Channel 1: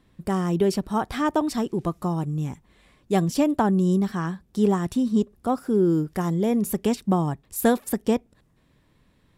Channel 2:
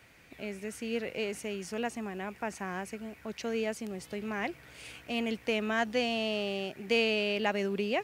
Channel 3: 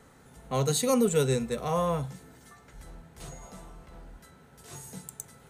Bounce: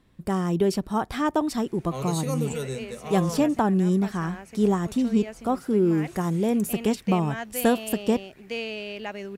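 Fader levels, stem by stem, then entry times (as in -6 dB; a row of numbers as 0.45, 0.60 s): -1.0, -4.5, -6.0 dB; 0.00, 1.60, 1.40 s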